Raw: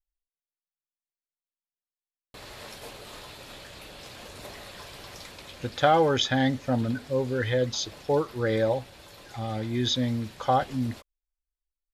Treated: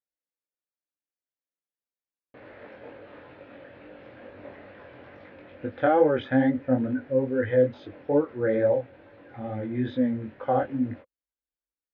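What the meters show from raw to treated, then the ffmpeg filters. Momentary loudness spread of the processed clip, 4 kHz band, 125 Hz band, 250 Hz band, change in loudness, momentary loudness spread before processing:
21 LU, below −15 dB, −4.0 dB, +3.0 dB, +1.0 dB, 20 LU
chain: -af "asubboost=boost=2.5:cutoff=230,flanger=delay=19.5:depth=4:speed=2.3,highpass=160,equalizer=frequency=160:width_type=q:width=4:gain=-9,equalizer=frequency=290:width_type=q:width=4:gain=9,equalizer=frequency=520:width_type=q:width=4:gain=10,equalizer=frequency=1100:width_type=q:width=4:gain=-5,equalizer=frequency=1600:width_type=q:width=4:gain=3,lowpass=frequency=2200:width=0.5412,lowpass=frequency=2200:width=1.3066"

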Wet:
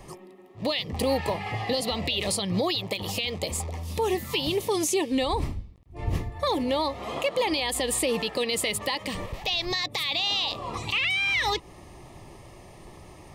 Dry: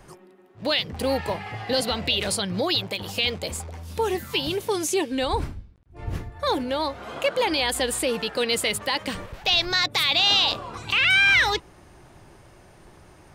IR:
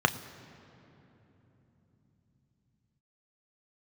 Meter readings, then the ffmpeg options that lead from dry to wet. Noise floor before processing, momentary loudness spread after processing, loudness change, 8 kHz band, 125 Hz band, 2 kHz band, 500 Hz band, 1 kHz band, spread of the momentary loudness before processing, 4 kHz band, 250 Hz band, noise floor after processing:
−52 dBFS, 8 LU, −4.0 dB, −0.5 dB, +1.0 dB, −6.5 dB, −1.5 dB, −2.5 dB, 14 LU, −5.0 dB, 0.0 dB, −49 dBFS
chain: -af "alimiter=limit=-20dB:level=0:latency=1:release=165,asuperstop=centerf=1500:order=4:qfactor=3.6,volume=3.5dB"

